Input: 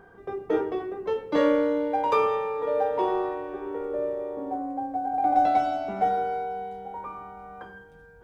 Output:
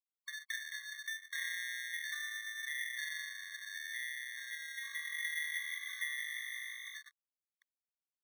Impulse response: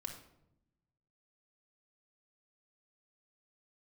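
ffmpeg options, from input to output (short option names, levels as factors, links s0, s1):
-filter_complex "[0:a]highshelf=f=2000:g=-11,acrusher=samples=33:mix=1:aa=0.000001,agate=range=0.2:threshold=0.0141:ratio=16:detection=peak,aeval=exprs='sgn(val(0))*max(abs(val(0))-0.00376,0)':c=same,asplit=3[s0][s1][s2];[s0]afade=t=out:st=4.82:d=0.02[s3];[s1]asplit=8[s4][s5][s6][s7][s8][s9][s10][s11];[s5]adelay=169,afreqshift=51,volume=0.422[s12];[s6]adelay=338,afreqshift=102,volume=0.232[s13];[s7]adelay=507,afreqshift=153,volume=0.127[s14];[s8]adelay=676,afreqshift=204,volume=0.07[s15];[s9]adelay=845,afreqshift=255,volume=0.0385[s16];[s10]adelay=1014,afreqshift=306,volume=0.0211[s17];[s11]adelay=1183,afreqshift=357,volume=0.0116[s18];[s4][s12][s13][s14][s15][s16][s17][s18]amix=inputs=8:normalize=0,afade=t=in:st=4.82:d=0.02,afade=t=out:st=6.97:d=0.02[s19];[s2]afade=t=in:st=6.97:d=0.02[s20];[s3][s19][s20]amix=inputs=3:normalize=0,acompressor=threshold=0.00631:ratio=2.5,highpass=f=1400:w=0.5412,highpass=f=1400:w=1.3066,highshelf=f=4600:g=-6,aecho=1:1:1.1:0.85,afftfilt=real='re*eq(mod(floor(b*sr/1024/1100),2),1)':imag='im*eq(mod(floor(b*sr/1024/1100),2),1)':win_size=1024:overlap=0.75,volume=2.24"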